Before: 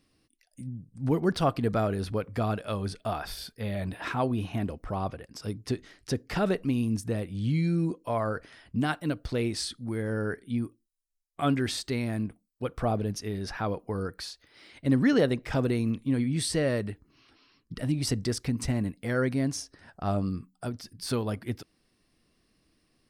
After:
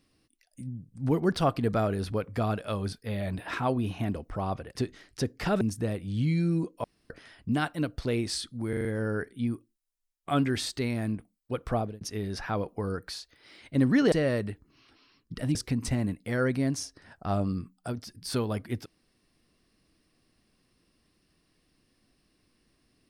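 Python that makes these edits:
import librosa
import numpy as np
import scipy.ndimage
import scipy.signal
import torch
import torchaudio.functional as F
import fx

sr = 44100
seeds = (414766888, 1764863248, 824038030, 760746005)

y = fx.edit(x, sr, fx.cut(start_s=2.93, length_s=0.54),
    fx.cut(start_s=5.3, length_s=0.36),
    fx.cut(start_s=6.51, length_s=0.37),
    fx.room_tone_fill(start_s=8.11, length_s=0.26),
    fx.stutter(start_s=9.96, slice_s=0.04, count=5),
    fx.fade_out_span(start_s=12.85, length_s=0.27),
    fx.cut(start_s=15.23, length_s=1.29),
    fx.cut(start_s=17.95, length_s=0.37), tone=tone)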